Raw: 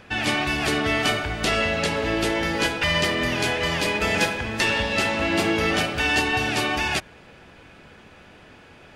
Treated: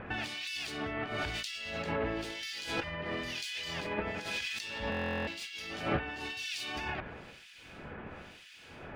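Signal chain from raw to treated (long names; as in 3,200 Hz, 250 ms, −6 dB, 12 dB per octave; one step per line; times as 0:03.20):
running median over 3 samples
dynamic equaliser 4,400 Hz, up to +5 dB, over −38 dBFS, Q 1
compressor whose output falls as the input rises −30 dBFS, ratio −1
two-band tremolo in antiphase 1 Hz, depth 100%, crossover 2,300 Hz
buffer that repeats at 0:04.90, samples 1,024, times 15
level −2.5 dB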